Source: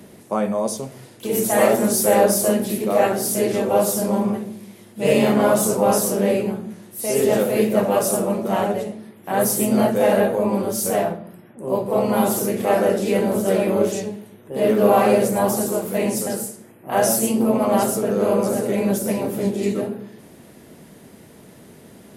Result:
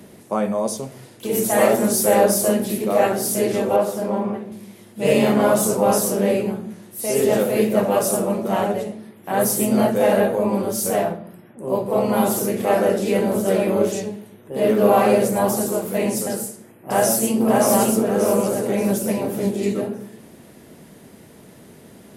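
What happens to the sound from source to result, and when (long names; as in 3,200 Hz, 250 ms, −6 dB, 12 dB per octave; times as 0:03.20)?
0:03.76–0:04.52: bass and treble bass −6 dB, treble −14 dB
0:16.32–0:17.45: delay throw 580 ms, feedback 40%, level −2 dB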